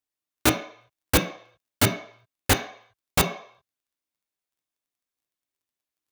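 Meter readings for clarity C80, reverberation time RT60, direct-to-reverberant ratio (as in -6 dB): 13.0 dB, 0.60 s, 4.0 dB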